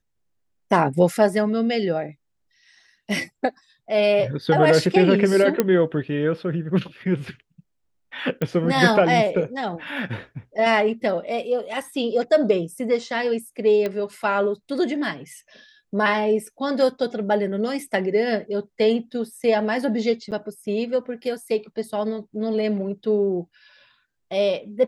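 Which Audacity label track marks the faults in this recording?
5.600000	5.600000	click −5 dBFS
8.420000	8.420000	click −13 dBFS
13.860000	13.860000	click −14 dBFS
20.310000	20.320000	drop-out 8.5 ms

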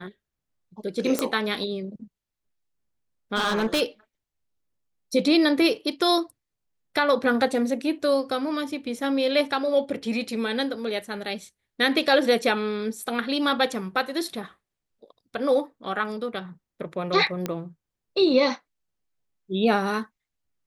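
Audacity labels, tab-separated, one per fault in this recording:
1.190000	1.190000	click −7 dBFS
3.350000	3.820000	clipping −19.5 dBFS
17.460000	17.460000	click −13 dBFS

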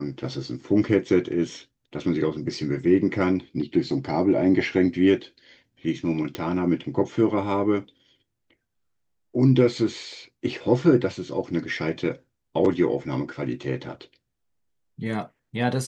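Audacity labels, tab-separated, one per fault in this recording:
6.350000	6.350000	click −15 dBFS

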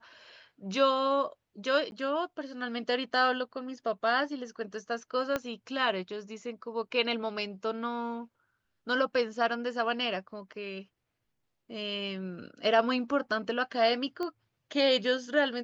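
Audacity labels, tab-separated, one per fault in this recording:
1.910000	1.920000	drop-out 11 ms
5.360000	5.360000	click −16 dBFS
14.230000	14.230000	click −23 dBFS

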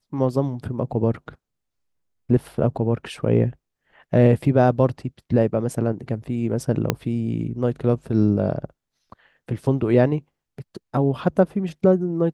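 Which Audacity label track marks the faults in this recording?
6.900000	6.900000	click −5 dBFS

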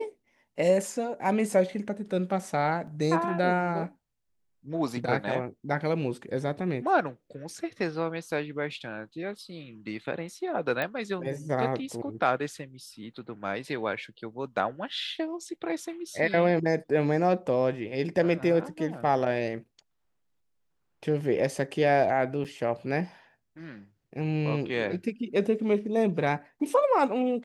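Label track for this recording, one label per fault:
2.870000	2.870000	drop-out 4.4 ms
10.820000	10.820000	click −16 dBFS
22.440000	22.450000	drop-out 7.7 ms

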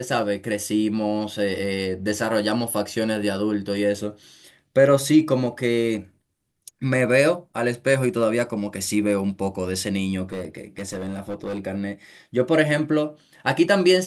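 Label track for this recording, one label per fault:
10.230000	11.600000	clipping −25 dBFS

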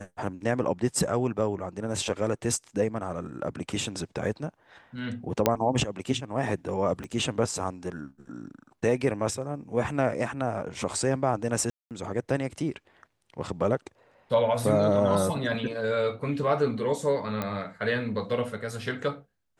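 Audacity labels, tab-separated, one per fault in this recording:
5.460000	5.460000	click −6 dBFS
7.040000	7.040000	click −24 dBFS
11.700000	11.910000	drop-out 208 ms
17.420000	17.420000	click −16 dBFS

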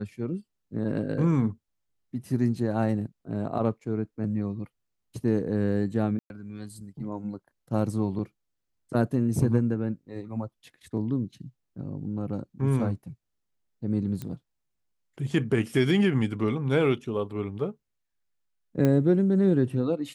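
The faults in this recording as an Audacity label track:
6.190000	6.300000	drop-out 111 ms
14.220000	14.220000	click −21 dBFS
18.850000	18.850000	click −13 dBFS

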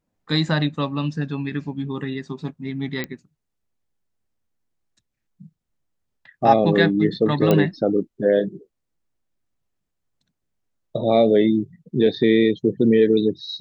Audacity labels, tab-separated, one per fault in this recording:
3.040000	3.040000	click −13 dBFS
7.510000	7.510000	click −6 dBFS

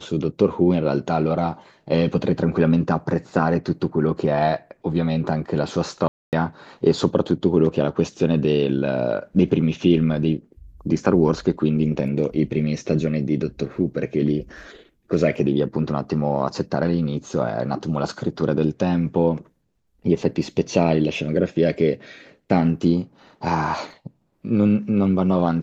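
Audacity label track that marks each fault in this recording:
6.080000	6.330000	drop-out 248 ms

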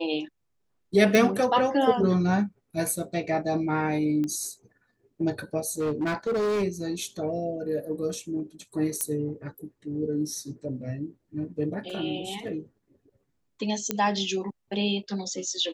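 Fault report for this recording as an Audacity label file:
1.150000	1.150000	click
4.240000	4.240000	click −20 dBFS
5.790000	6.640000	clipping −23 dBFS
9.010000	9.010000	click −12 dBFS
11.900000	11.900000	drop-out 2.1 ms
13.910000	13.910000	click −9 dBFS

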